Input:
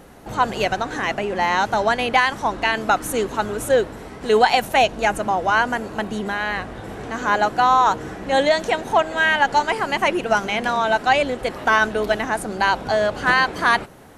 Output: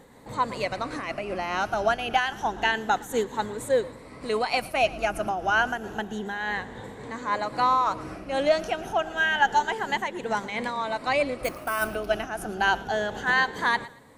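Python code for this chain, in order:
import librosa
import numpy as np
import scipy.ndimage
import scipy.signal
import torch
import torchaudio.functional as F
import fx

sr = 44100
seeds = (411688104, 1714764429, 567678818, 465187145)

p1 = fx.spec_ripple(x, sr, per_octave=1.0, drift_hz=0.29, depth_db=9)
p2 = fx.sample_hold(p1, sr, seeds[0], rate_hz=11000.0, jitter_pct=0, at=(11.44, 11.88))
p3 = p2 + fx.echo_thinned(p2, sr, ms=115, feedback_pct=32, hz=420.0, wet_db=-19.5, dry=0)
p4 = fx.am_noise(p3, sr, seeds[1], hz=5.7, depth_pct=65)
y = F.gain(torch.from_numpy(p4), -5.0).numpy()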